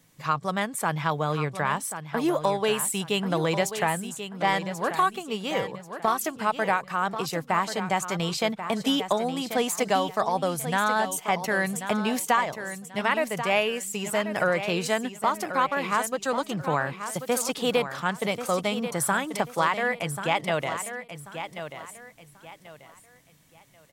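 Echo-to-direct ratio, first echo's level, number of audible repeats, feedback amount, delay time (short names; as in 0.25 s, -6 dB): -9.5 dB, -10.0 dB, 3, 29%, 1.087 s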